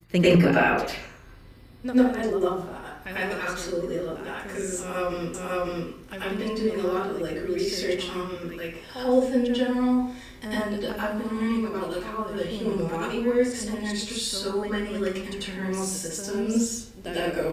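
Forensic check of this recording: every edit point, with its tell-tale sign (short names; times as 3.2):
5.34 repeat of the last 0.55 s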